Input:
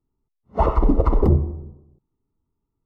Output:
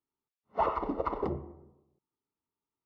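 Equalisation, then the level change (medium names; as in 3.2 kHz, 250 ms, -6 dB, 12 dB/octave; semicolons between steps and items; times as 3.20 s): high-pass 1.4 kHz 6 dB/octave; distance through air 180 m; 0.0 dB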